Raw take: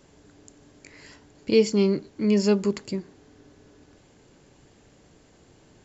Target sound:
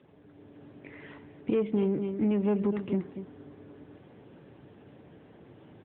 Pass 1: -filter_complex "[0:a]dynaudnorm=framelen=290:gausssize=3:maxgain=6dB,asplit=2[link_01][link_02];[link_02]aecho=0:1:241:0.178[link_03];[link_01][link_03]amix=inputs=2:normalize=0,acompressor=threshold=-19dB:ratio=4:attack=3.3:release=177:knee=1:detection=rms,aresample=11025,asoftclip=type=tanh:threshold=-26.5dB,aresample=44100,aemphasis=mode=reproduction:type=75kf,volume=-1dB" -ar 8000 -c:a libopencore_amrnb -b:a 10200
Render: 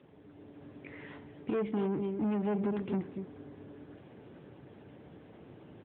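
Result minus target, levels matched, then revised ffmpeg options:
soft clipping: distortion +9 dB
-filter_complex "[0:a]dynaudnorm=framelen=290:gausssize=3:maxgain=6dB,asplit=2[link_01][link_02];[link_02]aecho=0:1:241:0.178[link_03];[link_01][link_03]amix=inputs=2:normalize=0,acompressor=threshold=-19dB:ratio=4:attack=3.3:release=177:knee=1:detection=rms,aresample=11025,asoftclip=type=tanh:threshold=-18dB,aresample=44100,aemphasis=mode=reproduction:type=75kf,volume=-1dB" -ar 8000 -c:a libopencore_amrnb -b:a 10200

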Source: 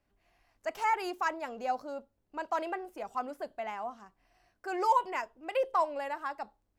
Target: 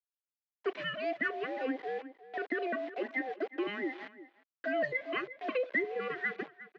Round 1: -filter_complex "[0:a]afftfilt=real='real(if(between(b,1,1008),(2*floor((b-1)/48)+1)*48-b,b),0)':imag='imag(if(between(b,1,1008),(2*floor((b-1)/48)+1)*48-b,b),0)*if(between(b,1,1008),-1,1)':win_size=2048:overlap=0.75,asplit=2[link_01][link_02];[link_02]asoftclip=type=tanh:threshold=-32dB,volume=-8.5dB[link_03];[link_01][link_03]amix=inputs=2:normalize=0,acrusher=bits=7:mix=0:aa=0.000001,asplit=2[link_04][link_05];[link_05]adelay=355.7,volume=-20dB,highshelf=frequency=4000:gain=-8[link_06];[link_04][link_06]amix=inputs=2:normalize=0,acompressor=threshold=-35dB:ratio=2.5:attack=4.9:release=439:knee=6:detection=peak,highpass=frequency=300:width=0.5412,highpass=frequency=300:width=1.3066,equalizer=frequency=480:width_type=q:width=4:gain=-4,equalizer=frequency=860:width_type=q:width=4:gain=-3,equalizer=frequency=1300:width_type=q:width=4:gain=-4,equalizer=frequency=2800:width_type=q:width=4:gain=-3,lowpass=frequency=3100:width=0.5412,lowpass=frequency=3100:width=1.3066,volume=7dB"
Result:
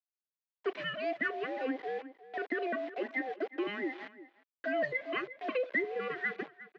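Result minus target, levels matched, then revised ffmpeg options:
soft clipping: distortion +7 dB
-filter_complex "[0:a]afftfilt=real='real(if(between(b,1,1008),(2*floor((b-1)/48)+1)*48-b,b),0)':imag='imag(if(between(b,1,1008),(2*floor((b-1)/48)+1)*48-b,b),0)*if(between(b,1,1008),-1,1)':win_size=2048:overlap=0.75,asplit=2[link_01][link_02];[link_02]asoftclip=type=tanh:threshold=-24.5dB,volume=-8.5dB[link_03];[link_01][link_03]amix=inputs=2:normalize=0,acrusher=bits=7:mix=0:aa=0.000001,asplit=2[link_04][link_05];[link_05]adelay=355.7,volume=-20dB,highshelf=frequency=4000:gain=-8[link_06];[link_04][link_06]amix=inputs=2:normalize=0,acompressor=threshold=-35dB:ratio=2.5:attack=4.9:release=439:knee=6:detection=peak,highpass=frequency=300:width=0.5412,highpass=frequency=300:width=1.3066,equalizer=frequency=480:width_type=q:width=4:gain=-4,equalizer=frequency=860:width_type=q:width=4:gain=-3,equalizer=frequency=1300:width_type=q:width=4:gain=-4,equalizer=frequency=2800:width_type=q:width=4:gain=-3,lowpass=frequency=3100:width=0.5412,lowpass=frequency=3100:width=1.3066,volume=7dB"

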